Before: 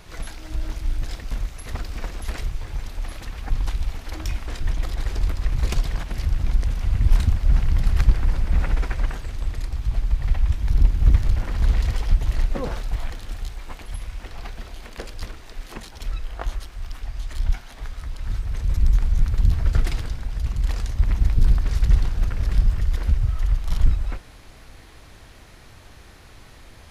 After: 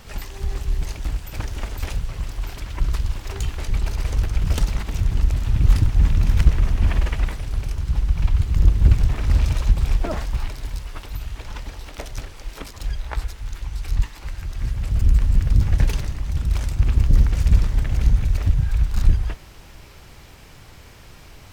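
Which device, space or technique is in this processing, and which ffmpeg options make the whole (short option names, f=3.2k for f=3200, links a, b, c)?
nightcore: -af "asetrate=55125,aresample=44100,volume=1.5dB"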